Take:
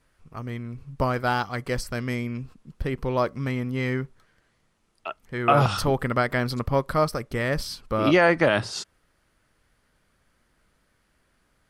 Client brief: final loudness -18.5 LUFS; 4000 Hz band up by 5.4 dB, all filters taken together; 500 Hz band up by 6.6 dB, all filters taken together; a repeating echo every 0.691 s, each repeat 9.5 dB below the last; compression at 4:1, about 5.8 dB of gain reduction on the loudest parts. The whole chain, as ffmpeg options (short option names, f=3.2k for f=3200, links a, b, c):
-af "equalizer=f=500:t=o:g=8,equalizer=f=4k:t=o:g=7,acompressor=threshold=-16dB:ratio=4,aecho=1:1:691|1382|2073|2764:0.335|0.111|0.0365|0.012,volume=5.5dB"